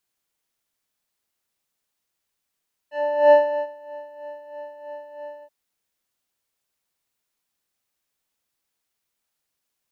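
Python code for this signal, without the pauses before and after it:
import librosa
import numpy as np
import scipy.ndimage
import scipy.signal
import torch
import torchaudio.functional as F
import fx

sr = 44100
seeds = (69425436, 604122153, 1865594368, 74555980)

y = fx.sub_patch_tremolo(sr, seeds[0], note=74, wave='square', wave2='square', interval_st=7, detune_cents=4, level2_db=-9.0, sub_db=-22.0, noise_db=-25, kind='lowpass', cutoff_hz=870.0, q=1.2, env_oct=1.5, env_decay_s=0.11, env_sustain_pct=20, attack_ms=404.0, decay_s=0.35, sustain_db=-24.0, release_s=0.06, note_s=2.52, lfo_hz=3.1, tremolo_db=9)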